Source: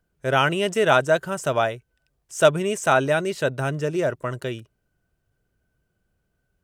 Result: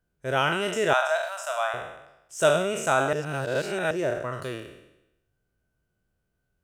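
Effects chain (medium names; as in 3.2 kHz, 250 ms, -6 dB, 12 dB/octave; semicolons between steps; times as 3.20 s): spectral sustain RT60 0.89 s; 0.93–1.74 s: elliptic high-pass 640 Hz, stop band 50 dB; 3.13–3.91 s: reverse; trim -6.5 dB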